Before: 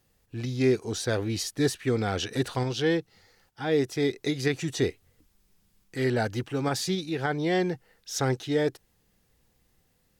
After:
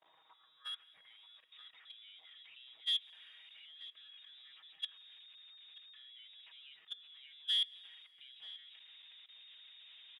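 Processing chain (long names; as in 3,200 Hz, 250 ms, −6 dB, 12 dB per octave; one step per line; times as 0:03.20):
converter with a step at zero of −33 dBFS
voice inversion scrambler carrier 3,700 Hz
comb filter 6.3 ms, depth 63%
output level in coarse steps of 20 dB
dynamic equaliser 2,200 Hz, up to −4 dB, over −44 dBFS, Q 2.1
soft clipping −28.5 dBFS, distortion −5 dB
noise gate −31 dBFS, range −19 dB
on a send at −22 dB: convolution reverb RT60 5.7 s, pre-delay 123 ms
on the sum: band-pass filter sweep 800 Hz → 2,700 Hz, 0:00.04–0:01.49
slap from a distant wall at 160 metres, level −10 dB
level +6.5 dB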